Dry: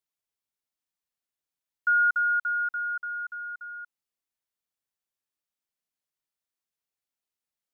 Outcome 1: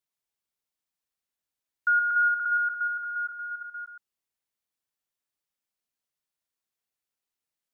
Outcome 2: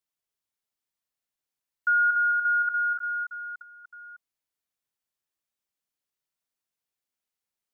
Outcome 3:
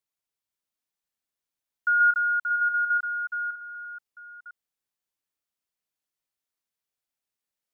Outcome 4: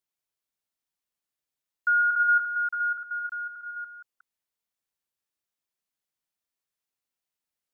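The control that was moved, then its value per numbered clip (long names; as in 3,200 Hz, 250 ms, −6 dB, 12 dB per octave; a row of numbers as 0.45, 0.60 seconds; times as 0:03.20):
delay that plays each chunk backwards, delay time: 117, 299, 501, 183 milliseconds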